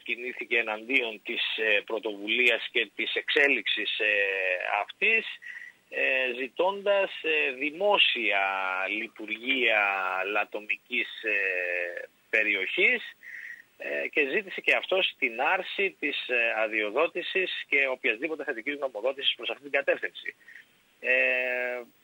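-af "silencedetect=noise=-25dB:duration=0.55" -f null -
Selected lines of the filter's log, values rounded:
silence_start: 5.28
silence_end: 5.96 | silence_duration: 0.68
silence_start: 12.97
silence_end: 13.86 | silence_duration: 0.89
silence_start: 20.29
silence_end: 21.05 | silence_duration: 0.76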